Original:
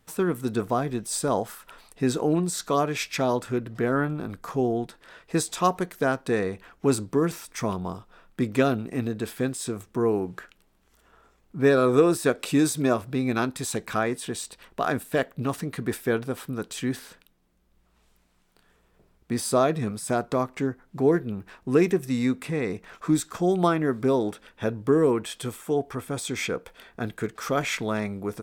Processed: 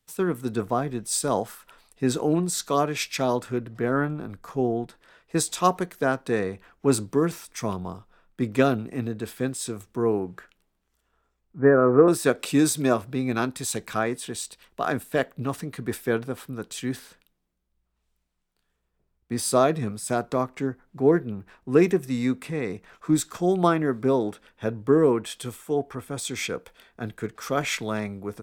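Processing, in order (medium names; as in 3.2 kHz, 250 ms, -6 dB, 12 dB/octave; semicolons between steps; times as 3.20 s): 11.59–12.08 s: steep low-pass 1.9 kHz 48 dB/octave; three bands expanded up and down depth 40%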